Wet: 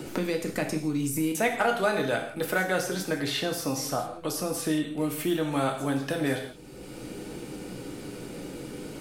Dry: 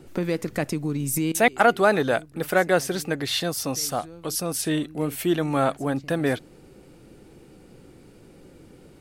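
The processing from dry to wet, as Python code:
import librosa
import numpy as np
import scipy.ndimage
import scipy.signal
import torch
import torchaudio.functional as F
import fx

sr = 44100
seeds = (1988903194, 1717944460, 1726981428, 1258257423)

y = fx.rev_gated(x, sr, seeds[0], gate_ms=200, shape='falling', drr_db=1.5)
y = fx.band_squash(y, sr, depth_pct=70)
y = F.gain(torch.from_numpy(y), -6.0).numpy()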